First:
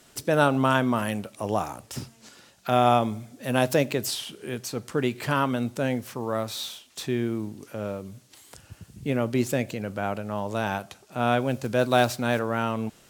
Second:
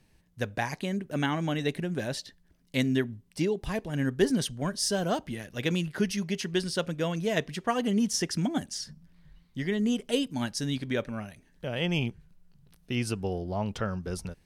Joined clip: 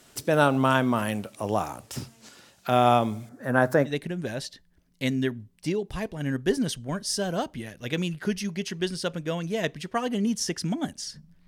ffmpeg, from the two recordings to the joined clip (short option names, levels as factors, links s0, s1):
-filter_complex "[0:a]asettb=1/sr,asplit=3[s0][s1][s2];[s0]atrim=end=3.294[s3];[s1]atrim=start=3.29:end=3.92,asetpts=PTS-STARTPTS,afade=t=in:d=0.004:c=qsin,afade=t=out:st=0.626:d=0.004:c=qsin,highshelf=f=2100:t=q:w=3:g=-9.5[s4];[s2]atrim=start=3.916[s5];[s3][s4]acrossfade=d=0.004:c1=hsin:c2=qsin[s6];[s6][s5]acrossfade=d=0.004:c1=qsin:c2=hsin,apad=whole_dur=11.47,atrim=end=11.47,atrim=end=3.92,asetpts=PTS-STARTPTS[s7];[1:a]atrim=start=1.57:end=9.2,asetpts=PTS-STARTPTS[s8];[s7][s8]acrossfade=d=0.08:c1=tri:c2=tri"